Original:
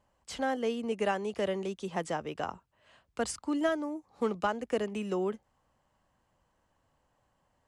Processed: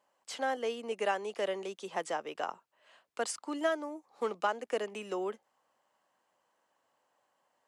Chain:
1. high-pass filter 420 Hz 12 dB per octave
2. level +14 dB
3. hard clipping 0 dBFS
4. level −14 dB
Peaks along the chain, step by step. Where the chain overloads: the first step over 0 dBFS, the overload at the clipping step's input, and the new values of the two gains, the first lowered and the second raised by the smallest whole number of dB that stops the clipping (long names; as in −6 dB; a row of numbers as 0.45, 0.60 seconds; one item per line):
−17.5, −3.5, −3.5, −17.5 dBFS
no step passes full scale